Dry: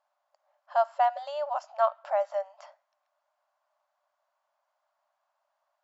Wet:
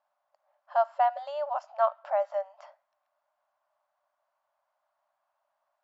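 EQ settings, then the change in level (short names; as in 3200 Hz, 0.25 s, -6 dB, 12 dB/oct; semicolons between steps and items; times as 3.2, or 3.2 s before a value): high shelf 4900 Hz -12 dB; 0.0 dB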